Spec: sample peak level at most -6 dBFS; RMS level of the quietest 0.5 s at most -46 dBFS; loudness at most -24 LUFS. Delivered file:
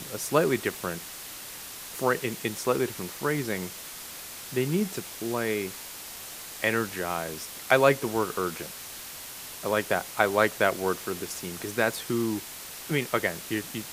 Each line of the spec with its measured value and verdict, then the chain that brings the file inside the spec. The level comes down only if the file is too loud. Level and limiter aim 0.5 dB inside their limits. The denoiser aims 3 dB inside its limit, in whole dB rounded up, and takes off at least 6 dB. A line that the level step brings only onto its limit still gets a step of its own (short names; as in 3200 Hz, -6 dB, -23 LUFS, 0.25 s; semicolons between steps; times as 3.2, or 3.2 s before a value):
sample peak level -5.0 dBFS: fail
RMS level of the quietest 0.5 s -41 dBFS: fail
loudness -29.0 LUFS: OK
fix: denoiser 8 dB, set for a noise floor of -41 dBFS; limiter -6.5 dBFS